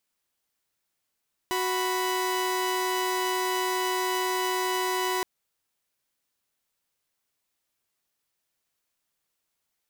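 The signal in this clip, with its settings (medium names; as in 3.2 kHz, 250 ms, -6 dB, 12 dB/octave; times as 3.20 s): chord F#4/B5 saw, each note -25.5 dBFS 3.72 s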